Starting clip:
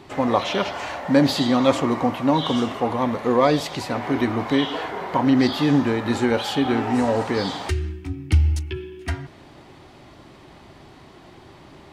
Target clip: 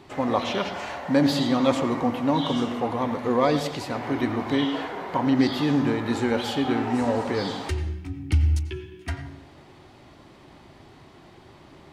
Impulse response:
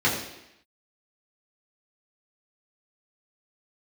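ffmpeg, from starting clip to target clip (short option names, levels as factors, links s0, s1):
-filter_complex "[0:a]asplit=2[s0][s1];[1:a]atrim=start_sample=2205,adelay=88[s2];[s1][s2]afir=irnorm=-1:irlink=0,volume=0.0501[s3];[s0][s3]amix=inputs=2:normalize=0,volume=0.631"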